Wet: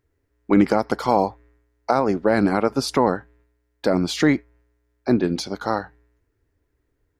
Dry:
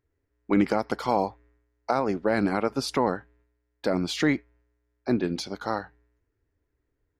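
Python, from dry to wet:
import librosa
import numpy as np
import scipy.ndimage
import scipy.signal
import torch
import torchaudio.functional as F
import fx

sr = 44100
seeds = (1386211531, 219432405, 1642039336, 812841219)

y = fx.dynamic_eq(x, sr, hz=2700.0, q=1.1, threshold_db=-45.0, ratio=4.0, max_db=-4)
y = y * 10.0 ** (6.0 / 20.0)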